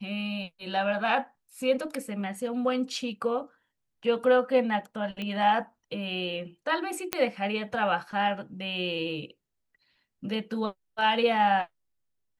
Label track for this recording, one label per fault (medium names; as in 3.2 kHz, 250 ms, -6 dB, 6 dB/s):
5.220000	5.220000	pop -22 dBFS
7.130000	7.130000	pop -8 dBFS